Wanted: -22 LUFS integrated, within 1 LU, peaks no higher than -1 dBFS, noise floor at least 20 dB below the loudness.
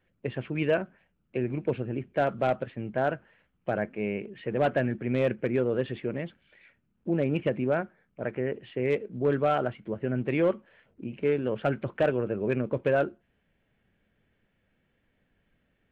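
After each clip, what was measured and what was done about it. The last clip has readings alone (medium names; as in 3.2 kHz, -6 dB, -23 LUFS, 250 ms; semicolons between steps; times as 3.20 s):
loudness -29.5 LUFS; peak level -16.0 dBFS; loudness target -22.0 LUFS
-> trim +7.5 dB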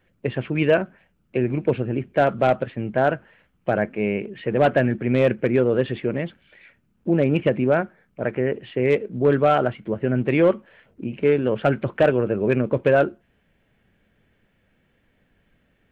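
loudness -22.0 LUFS; peak level -8.5 dBFS; noise floor -66 dBFS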